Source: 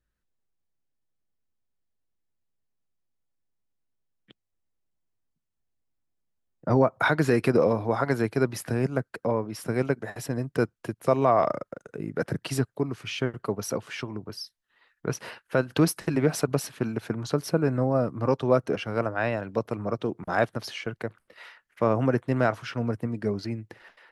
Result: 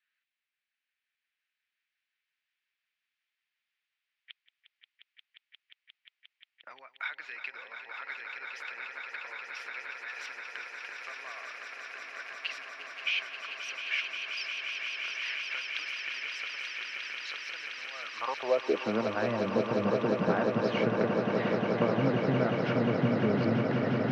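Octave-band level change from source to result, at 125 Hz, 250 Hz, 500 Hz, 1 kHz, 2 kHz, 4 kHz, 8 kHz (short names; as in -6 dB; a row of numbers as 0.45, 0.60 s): -7.5, -4.5, -6.0, -6.0, 0.0, +2.5, -12.5 dB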